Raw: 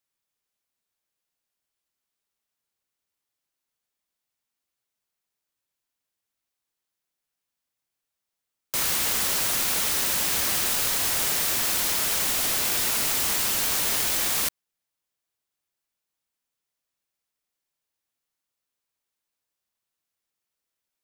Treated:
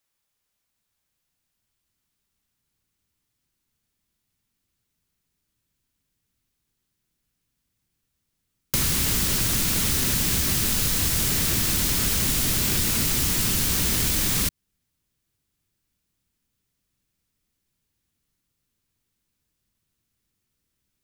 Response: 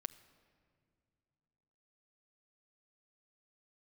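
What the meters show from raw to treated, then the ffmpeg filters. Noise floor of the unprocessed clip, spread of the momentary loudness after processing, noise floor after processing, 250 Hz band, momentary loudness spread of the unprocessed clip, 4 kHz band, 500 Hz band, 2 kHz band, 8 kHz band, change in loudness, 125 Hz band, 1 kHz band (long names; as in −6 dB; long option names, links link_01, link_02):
−85 dBFS, 0 LU, −79 dBFS, +10.5 dB, 0 LU, +1.0 dB, +0.5 dB, −0.5 dB, +1.0 dB, +1.0 dB, +15.5 dB, −3.0 dB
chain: -filter_complex "[0:a]asubboost=boost=8:cutoff=230,acrossover=split=3600|7700[link_01][link_02][link_03];[link_01]acompressor=threshold=-31dB:ratio=4[link_04];[link_02]acompressor=threshold=-36dB:ratio=4[link_05];[link_03]acompressor=threshold=-30dB:ratio=4[link_06];[link_04][link_05][link_06]amix=inputs=3:normalize=0,volume=6dB"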